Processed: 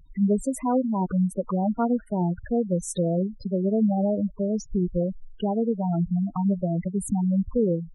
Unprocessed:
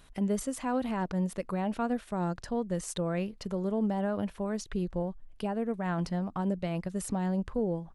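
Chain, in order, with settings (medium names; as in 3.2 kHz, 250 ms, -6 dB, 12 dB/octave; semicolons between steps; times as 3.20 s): dynamic bell 3.6 kHz, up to -4 dB, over -58 dBFS, Q 1.8; spectral gate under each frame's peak -10 dB strong; trim +8 dB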